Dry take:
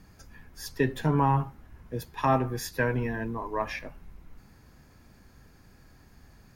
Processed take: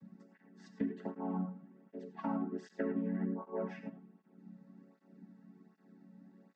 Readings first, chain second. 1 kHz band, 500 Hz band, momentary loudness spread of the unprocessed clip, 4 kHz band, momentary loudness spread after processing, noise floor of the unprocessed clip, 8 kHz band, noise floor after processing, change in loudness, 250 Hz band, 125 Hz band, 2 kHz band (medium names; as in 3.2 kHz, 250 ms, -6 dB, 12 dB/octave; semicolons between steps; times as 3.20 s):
-17.5 dB, -11.0 dB, 15 LU, under -20 dB, 22 LU, -56 dBFS, under -25 dB, -69 dBFS, -10.5 dB, -5.0 dB, -16.0 dB, -19.0 dB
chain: vocoder on a held chord minor triad, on F#3; tilt EQ -2.5 dB/octave; compression 4:1, threshold -27 dBFS, peak gain reduction 11 dB; gated-style reverb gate 120 ms rising, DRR 9.5 dB; cancelling through-zero flanger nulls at 1.3 Hz, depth 3 ms; trim -4.5 dB